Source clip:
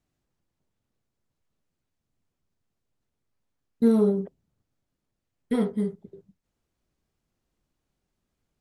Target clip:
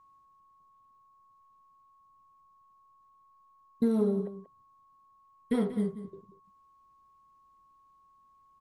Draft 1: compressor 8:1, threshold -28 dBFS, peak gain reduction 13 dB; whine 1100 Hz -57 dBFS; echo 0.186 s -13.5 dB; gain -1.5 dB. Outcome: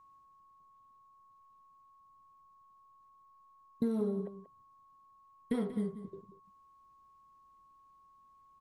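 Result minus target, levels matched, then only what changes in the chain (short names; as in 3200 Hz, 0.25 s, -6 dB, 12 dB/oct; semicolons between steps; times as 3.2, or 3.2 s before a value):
compressor: peak gain reduction +6 dB
change: compressor 8:1, threshold -21 dBFS, peak gain reduction 7 dB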